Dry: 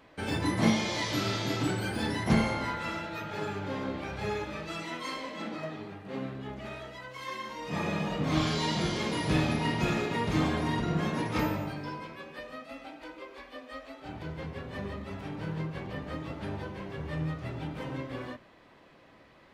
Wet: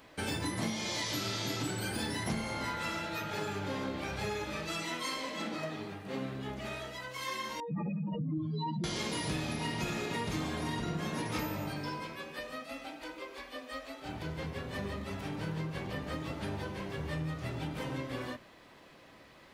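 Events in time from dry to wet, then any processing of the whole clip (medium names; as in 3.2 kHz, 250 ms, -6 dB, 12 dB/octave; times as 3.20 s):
7.60–8.84 s: spectral contrast enhancement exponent 3.4
whole clip: treble shelf 4.6 kHz +11.5 dB; compression, threshold -32 dBFS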